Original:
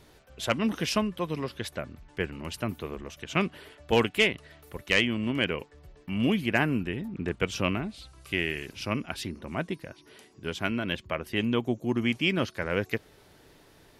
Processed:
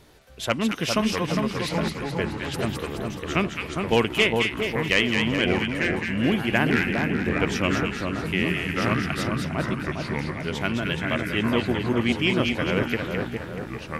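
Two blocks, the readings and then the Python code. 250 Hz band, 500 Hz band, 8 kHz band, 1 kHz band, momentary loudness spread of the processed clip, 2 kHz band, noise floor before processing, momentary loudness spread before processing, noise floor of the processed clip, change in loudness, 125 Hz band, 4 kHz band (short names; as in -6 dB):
+5.5 dB, +5.0 dB, +5.0 dB, +6.0 dB, 7 LU, +5.5 dB, -58 dBFS, 14 LU, -36 dBFS, +5.0 dB, +6.5 dB, +4.5 dB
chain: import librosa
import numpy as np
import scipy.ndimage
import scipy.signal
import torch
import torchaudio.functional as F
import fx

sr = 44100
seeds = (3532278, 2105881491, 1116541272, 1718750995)

y = fx.echo_pitch(x, sr, ms=526, semitones=-4, count=2, db_per_echo=-6.0)
y = fx.echo_split(y, sr, split_hz=1400.0, low_ms=406, high_ms=213, feedback_pct=52, wet_db=-4)
y = y * 10.0 ** (2.5 / 20.0)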